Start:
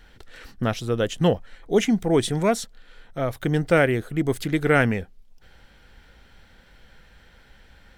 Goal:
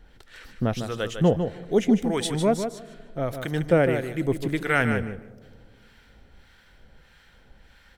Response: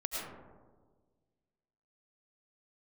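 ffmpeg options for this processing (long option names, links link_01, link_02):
-filter_complex "[0:a]acrossover=split=880[link_01][link_02];[link_01]aeval=exprs='val(0)*(1-0.7/2+0.7/2*cos(2*PI*1.6*n/s))':channel_layout=same[link_03];[link_02]aeval=exprs='val(0)*(1-0.7/2-0.7/2*cos(2*PI*1.6*n/s))':channel_layout=same[link_04];[link_03][link_04]amix=inputs=2:normalize=0,aecho=1:1:152|304|456:0.398|0.0677|0.0115,asplit=2[link_05][link_06];[1:a]atrim=start_sample=2205,asetrate=29106,aresample=44100[link_07];[link_06][link_07]afir=irnorm=-1:irlink=0,volume=-26dB[link_08];[link_05][link_08]amix=inputs=2:normalize=0"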